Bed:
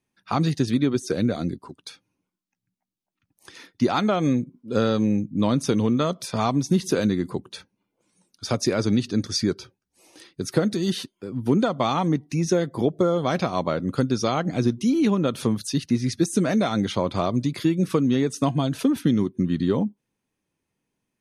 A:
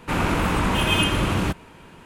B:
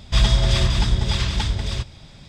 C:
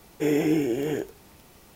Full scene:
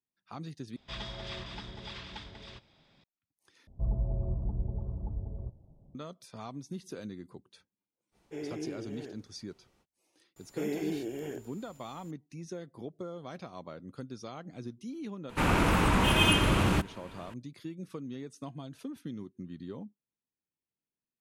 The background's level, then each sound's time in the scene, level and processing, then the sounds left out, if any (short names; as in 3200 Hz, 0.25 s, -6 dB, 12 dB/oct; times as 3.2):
bed -20 dB
0.76 replace with B -15.5 dB + three-band isolator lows -15 dB, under 180 Hz, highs -18 dB, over 4700 Hz
3.67 replace with B -13.5 dB + inverse Chebyshev low-pass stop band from 1800 Hz, stop band 50 dB
8.11 add C -16 dB, fades 0.05 s + air absorption 53 m
10.36 add C -11 dB + whine 7100 Hz -52 dBFS
15.29 add A -3.5 dB